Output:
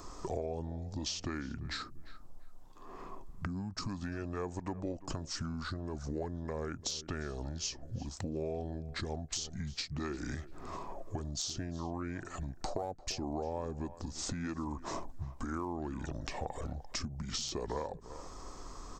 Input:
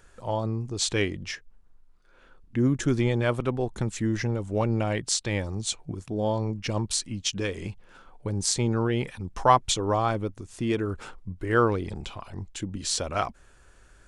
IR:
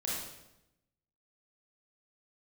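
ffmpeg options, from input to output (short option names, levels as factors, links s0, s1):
-filter_complex "[0:a]asplit=2[s0][s1];[s1]asoftclip=type=hard:threshold=0.178,volume=0.398[s2];[s0][s2]amix=inputs=2:normalize=0,acompressor=threshold=0.0224:ratio=16,equalizer=f=3300:t=o:w=1.7:g=-13,asetrate=32667,aresample=44100,lowshelf=f=260:g=-6,asplit=2[s3][s4];[s4]adelay=343,lowpass=f=2500:p=1,volume=0.0891,asplit=2[s5][s6];[s6]adelay=343,lowpass=f=2500:p=1,volume=0.21[s7];[s3][s5][s7]amix=inputs=3:normalize=0,acrossover=split=550|6000[s8][s9][s10];[s8]acompressor=threshold=0.00316:ratio=4[s11];[s9]acompressor=threshold=0.00251:ratio=4[s12];[s10]acompressor=threshold=0.00178:ratio=4[s13];[s11][s12][s13]amix=inputs=3:normalize=0,volume=3.76"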